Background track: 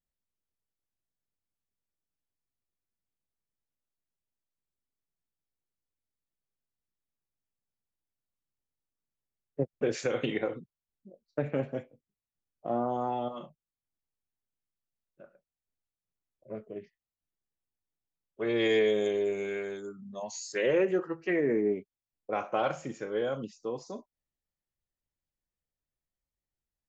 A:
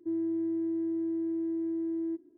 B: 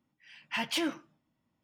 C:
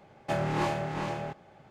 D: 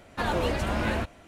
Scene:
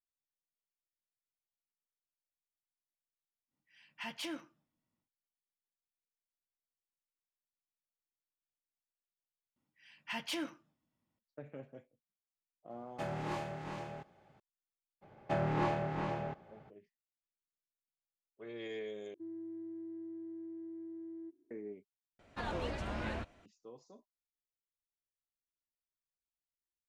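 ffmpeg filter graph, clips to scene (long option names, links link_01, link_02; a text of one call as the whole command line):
ffmpeg -i bed.wav -i cue0.wav -i cue1.wav -i cue2.wav -i cue3.wav -filter_complex "[2:a]asplit=2[link_01][link_02];[3:a]asplit=2[link_03][link_04];[0:a]volume=-17.5dB[link_05];[link_04]aemphasis=mode=reproduction:type=75fm[link_06];[4:a]lowpass=7000[link_07];[link_05]asplit=4[link_08][link_09][link_10][link_11];[link_08]atrim=end=9.564[link_12];[link_02]atrim=end=1.63,asetpts=PTS-STARTPTS,volume=-7.5dB[link_13];[link_09]atrim=start=11.186:end=19.144[link_14];[1:a]atrim=end=2.37,asetpts=PTS-STARTPTS,volume=-14dB[link_15];[link_10]atrim=start=21.506:end=22.194[link_16];[link_07]atrim=end=1.27,asetpts=PTS-STARTPTS,volume=-11.5dB[link_17];[link_11]atrim=start=23.456[link_18];[link_01]atrim=end=1.63,asetpts=PTS-STARTPTS,volume=-10.5dB,afade=type=in:duration=0.1,afade=type=out:start_time=1.53:duration=0.1,adelay=3470[link_19];[link_03]atrim=end=1.7,asetpts=PTS-STARTPTS,volume=-10dB,afade=type=in:duration=0.004:curve=hsin,afade=type=out:start_time=1.696:duration=0.004:curve=hsin,adelay=12700[link_20];[link_06]atrim=end=1.7,asetpts=PTS-STARTPTS,volume=-4dB,afade=type=in:duration=0.02,afade=type=out:start_time=1.68:duration=0.02,adelay=15010[link_21];[link_12][link_13]acrossfade=duration=0.004:curve1=hsin:curve2=hsin[link_22];[link_22][link_14]acrossfade=duration=0.004:curve1=hsin:curve2=hsin[link_23];[link_23][link_15]acrossfade=duration=0.004:curve1=hsin:curve2=hsin[link_24];[link_24][link_16]acrossfade=duration=0.004:curve1=hsin:curve2=hsin[link_25];[link_25][link_17]acrossfade=duration=0.004:curve1=hsin:curve2=hsin[link_26];[link_26][link_18]acrossfade=duration=0.004:curve1=hsin:curve2=hsin[link_27];[link_27][link_19][link_20][link_21]amix=inputs=4:normalize=0" out.wav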